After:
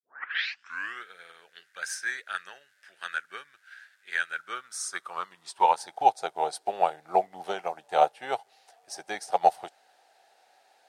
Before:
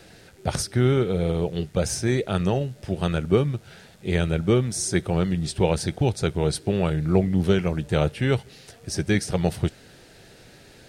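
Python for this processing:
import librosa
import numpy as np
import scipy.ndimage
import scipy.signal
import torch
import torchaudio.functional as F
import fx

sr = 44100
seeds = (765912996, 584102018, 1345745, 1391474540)

y = fx.tape_start_head(x, sr, length_s=1.05)
y = fx.dynamic_eq(y, sr, hz=2400.0, q=1.1, threshold_db=-40.0, ratio=4.0, max_db=-4)
y = fx.filter_sweep_highpass(y, sr, from_hz=1600.0, to_hz=770.0, start_s=4.24, end_s=6.12, q=7.1)
y = fx.upward_expand(y, sr, threshold_db=-44.0, expansion=1.5)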